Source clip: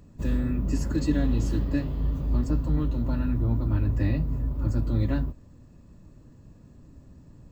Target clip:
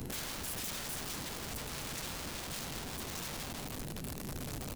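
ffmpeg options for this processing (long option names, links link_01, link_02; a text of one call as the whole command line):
ffmpeg -i in.wav -filter_complex "[0:a]asetrate=69678,aresample=44100,highshelf=frequency=3200:gain=10.5,asplit=2[link_01][link_02];[link_02]adelay=158,lowpass=frequency=1700:poles=1,volume=-5dB,asplit=2[link_03][link_04];[link_04]adelay=158,lowpass=frequency=1700:poles=1,volume=0.32,asplit=2[link_05][link_06];[link_06]adelay=158,lowpass=frequency=1700:poles=1,volume=0.32,asplit=2[link_07][link_08];[link_08]adelay=158,lowpass=frequency=1700:poles=1,volume=0.32[link_09];[link_01][link_03][link_05][link_07][link_09]amix=inputs=5:normalize=0,asplit=2[link_10][link_11];[link_11]acrusher=samples=34:mix=1:aa=0.000001:lfo=1:lforange=20.4:lforate=0.8,volume=-5.5dB[link_12];[link_10][link_12]amix=inputs=2:normalize=0,acompressor=threshold=-31dB:ratio=10,aeval=exprs='(mod(94.4*val(0)+1,2)-1)/94.4':channel_layout=same,acrossover=split=250|3000[link_13][link_14][link_15];[link_14]acompressor=threshold=-52dB:ratio=5[link_16];[link_13][link_16][link_15]amix=inputs=3:normalize=0,volume=6.5dB" out.wav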